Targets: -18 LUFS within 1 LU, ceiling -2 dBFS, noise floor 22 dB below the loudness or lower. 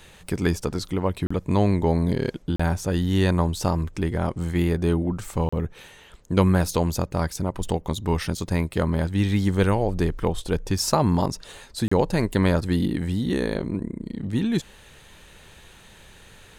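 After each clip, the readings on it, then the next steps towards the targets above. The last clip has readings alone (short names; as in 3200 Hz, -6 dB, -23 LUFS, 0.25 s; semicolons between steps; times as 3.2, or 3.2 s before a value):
dropouts 4; longest dropout 35 ms; loudness -24.5 LUFS; peak -3.5 dBFS; loudness target -18.0 LUFS
-> interpolate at 1.27/2.56/5.49/11.88, 35 ms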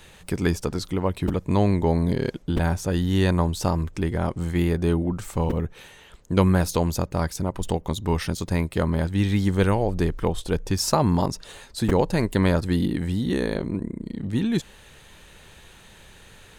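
dropouts 0; loudness -24.5 LUFS; peak -3.5 dBFS; loudness target -18.0 LUFS
-> gain +6.5 dB; limiter -2 dBFS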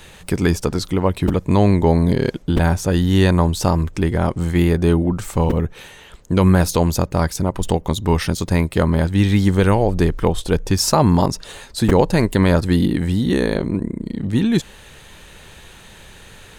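loudness -18.0 LUFS; peak -2.0 dBFS; noise floor -43 dBFS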